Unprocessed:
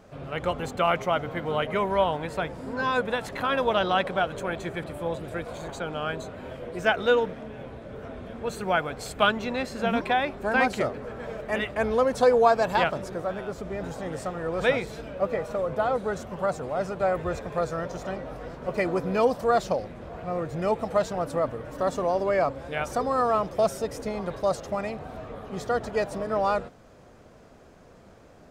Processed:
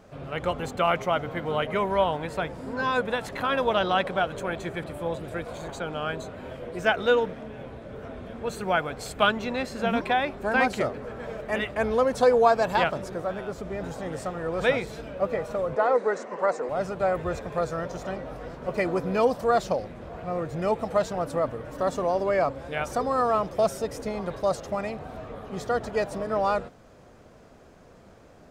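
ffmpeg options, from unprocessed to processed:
ffmpeg -i in.wav -filter_complex "[0:a]asettb=1/sr,asplit=3[link_01][link_02][link_03];[link_01]atrim=end=15.764[link_04];[link_02]atrim=start=15.76:end=16.69,asetpts=PTS-STARTPTS,afade=type=in:duration=0.004:curve=qsin,afade=type=out:start_time=0.926:duration=0.004:curve=qsin,highpass=frequency=240:width=0.5412,highpass=frequency=240:width=1.3066,equalizer=frequency=470:width_type=q:width=4:gain=7,equalizer=frequency=1000:width_type=q:width=4:gain=6,equalizer=frequency=1900:width_type=q:width=4:gain=9,equalizer=frequency=3300:width_type=q:width=4:gain=-8,lowpass=frequency=8200:width=0.5412,lowpass=frequency=8200:width=1.3066[link_05];[link_03]atrim=start=16.686[link_06];[link_04][link_05]acrossfade=duration=0.004:curve1=hsin:curve2=qsin[link_07];[link_07][link_06]acrossfade=duration=0.004:curve1=qsin:curve2=hsin" out.wav

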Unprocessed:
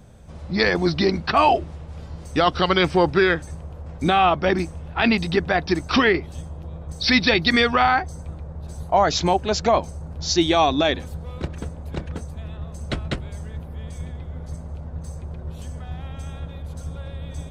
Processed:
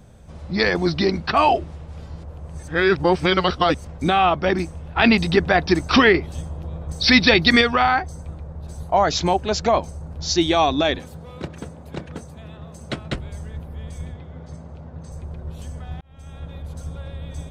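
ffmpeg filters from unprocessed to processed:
ffmpeg -i in.wav -filter_complex "[0:a]asettb=1/sr,asplit=3[link_01][link_02][link_03];[link_01]atrim=end=10.984[link_04];[link_02]atrim=start=10.98:end=13.12,asetpts=PTS-STARTPTS,afade=type=in:duration=0.004:curve=qsin,afade=type=out:start_time=2.136:duration=0.004:curve=qsin,highpass=120[link_05];[link_03]atrim=start=13.116[link_06];[link_04][link_05]acrossfade=duration=0.004:curve1=hsin:curve2=qsin[link_07];[link_07][link_06]acrossfade=duration=0.004:curve1=qsin:curve2=hsin,asettb=1/sr,asplit=3[link_08][link_09][link_10];[link_08]atrim=end=14.144[link_11];[link_09]atrim=start=14.14:end=15.12,asetpts=PTS-STARTPTS,afade=type=in:duration=0.004:curve=qsin,afade=type=out:start_time=0.976:duration=0.004:curve=qsin,highpass=100,lowpass=6100[link_12];[link_10]atrim=start=15.116[link_13];[link_11][link_12]acrossfade=duration=0.004:curve1=hsin:curve2=qsin[link_14];[link_14][link_13]acrossfade=duration=0.004:curve1=qsin:curve2=hsin,asplit=6[link_15][link_16][link_17][link_18][link_19][link_20];[link_15]atrim=end=2.232[link_21];[link_16]atrim=start=2.228:end=3.872,asetpts=PTS-STARTPTS,areverse[link_22];[link_17]atrim=start=3.868:end=4.962[link_23];[link_18]atrim=start=4.958:end=7.612,asetpts=PTS-STARTPTS,volume=3.5dB[link_24];[link_19]atrim=start=7.608:end=16.01,asetpts=PTS-STARTPTS,afade=type=out:start_time=8.398:duration=0.004:curve=hsin[link_25];[link_20]atrim=start=16.01,asetpts=PTS-STARTPTS,afade=type=in:duration=0.53[link_26];[link_21][link_22]acrossfade=duration=0.004:curve1=hsin:curve2=hsin[link_27];[link_27][link_23]acrossfade=duration=0.004:curve1=hsin:curve2=hsin[link_28];[link_28][link_24]acrossfade=duration=0.004:curve1=hsin:curve2=hsin[link_29];[link_25][link_26]concat=n=2:v=0:a=1[link_30];[link_29][link_30]acrossfade=duration=0.004:curve1=hsin:curve2=hsin" out.wav

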